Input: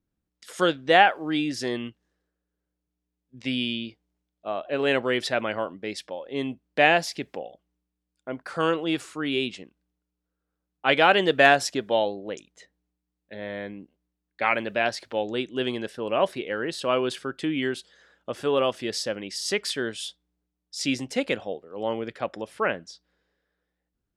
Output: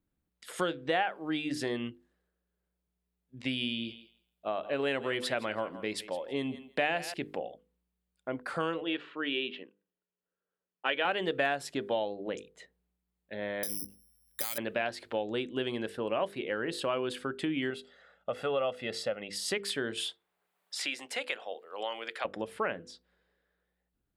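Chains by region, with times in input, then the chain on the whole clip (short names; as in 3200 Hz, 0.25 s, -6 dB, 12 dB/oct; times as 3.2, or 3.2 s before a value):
3.49–7.14 high shelf 5300 Hz +6 dB + thinning echo 0.163 s, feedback 15%, level -16 dB
8.81–11.05 speaker cabinet 340–3500 Hz, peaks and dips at 750 Hz -7 dB, 1200 Hz -4 dB, 1900 Hz +4 dB, 3100 Hz +4 dB + notch 2100 Hz, Q 10 + mismatched tape noise reduction decoder only
13.63–14.58 bell 72 Hz +14.5 dB 0.78 oct + compressor, threshold -34 dBFS + careless resampling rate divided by 8×, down none, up zero stuff
17.7–19.33 LPF 3200 Hz 6 dB/oct + low shelf 140 Hz -9 dB + comb 1.5 ms, depth 63%
19.97–22.25 HPF 790 Hz + three-band squash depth 70%
whole clip: bell 5800 Hz -8.5 dB 0.63 oct; notches 50/100/150/200/250/300/350/400/450/500 Hz; compressor 3:1, threshold -30 dBFS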